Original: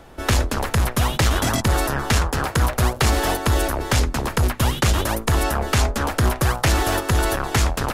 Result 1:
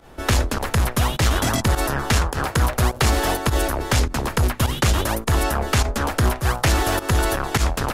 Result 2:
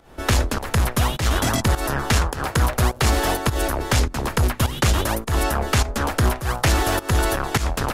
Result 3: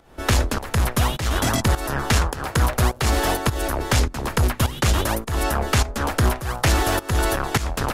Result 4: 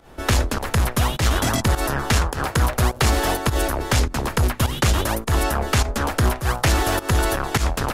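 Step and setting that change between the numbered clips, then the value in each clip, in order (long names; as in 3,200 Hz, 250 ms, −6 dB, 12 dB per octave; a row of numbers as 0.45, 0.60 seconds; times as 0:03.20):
fake sidechain pumping, release: 73, 193, 329, 120 milliseconds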